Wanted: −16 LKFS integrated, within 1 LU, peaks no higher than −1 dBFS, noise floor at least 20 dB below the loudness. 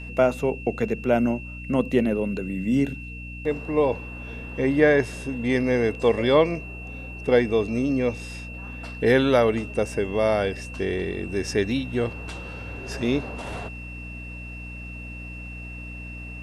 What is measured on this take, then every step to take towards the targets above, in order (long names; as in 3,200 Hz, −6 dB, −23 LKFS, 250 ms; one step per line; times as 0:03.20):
mains hum 60 Hz; hum harmonics up to 300 Hz; level of the hum −35 dBFS; interfering tone 2,700 Hz; level of the tone −39 dBFS; integrated loudness −24.0 LKFS; sample peak −5.0 dBFS; target loudness −16.0 LKFS
→ hum removal 60 Hz, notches 5
notch filter 2,700 Hz, Q 30
level +8 dB
brickwall limiter −1 dBFS